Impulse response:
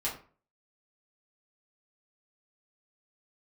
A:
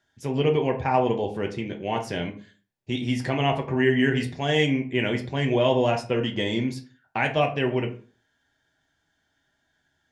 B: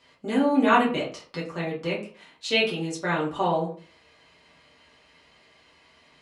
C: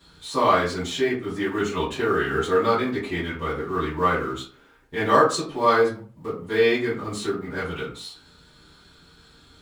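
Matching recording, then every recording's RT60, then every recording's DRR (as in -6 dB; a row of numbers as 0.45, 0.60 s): B; 0.40, 0.40, 0.40 s; 2.0, -6.5, -12.5 dB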